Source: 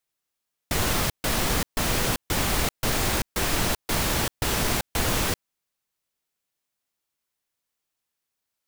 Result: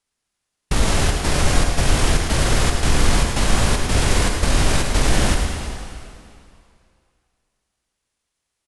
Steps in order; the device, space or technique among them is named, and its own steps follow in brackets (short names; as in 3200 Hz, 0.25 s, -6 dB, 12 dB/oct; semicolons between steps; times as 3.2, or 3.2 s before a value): monster voice (pitch shift -8 st; formant shift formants -3.5 st; low shelf 150 Hz +8.5 dB; echo 0.107 s -9.5 dB; reverb RT60 2.5 s, pre-delay 54 ms, DRR 3 dB); gain +3 dB